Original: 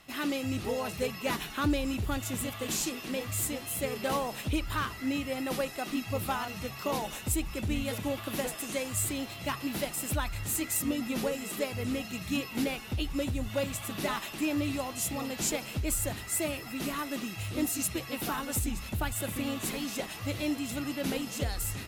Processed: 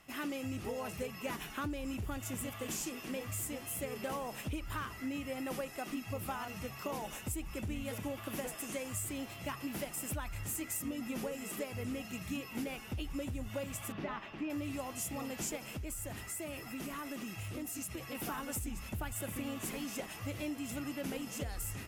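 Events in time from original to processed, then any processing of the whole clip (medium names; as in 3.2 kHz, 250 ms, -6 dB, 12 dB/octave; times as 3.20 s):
13.92–14.50 s: distance through air 260 m
15.57–18.15 s: compression, threshold -33 dBFS
whole clip: peaking EQ 4 kHz -9 dB 0.39 oct; compression, threshold -31 dBFS; trim -4 dB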